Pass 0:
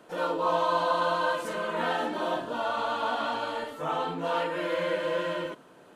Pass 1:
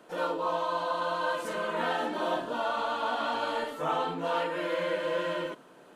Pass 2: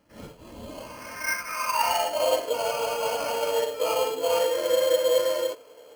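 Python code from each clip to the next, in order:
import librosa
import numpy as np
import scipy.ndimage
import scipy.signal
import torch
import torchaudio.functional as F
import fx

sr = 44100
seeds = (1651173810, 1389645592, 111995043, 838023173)

y1 = fx.peak_eq(x, sr, hz=85.0, db=-14.5, octaves=0.67)
y1 = fx.rider(y1, sr, range_db=10, speed_s=0.5)
y1 = y1 * 10.0 ** (-1.5 / 20.0)
y2 = fx.filter_sweep_highpass(y1, sr, from_hz=3900.0, to_hz=460.0, start_s=0.55, end_s=2.4, q=4.8)
y2 = fx.sample_hold(y2, sr, seeds[0], rate_hz=3700.0, jitter_pct=0)
y2 = fx.notch_comb(y2, sr, f0_hz=380.0)
y2 = y2 * 10.0 ** (-1.0 / 20.0)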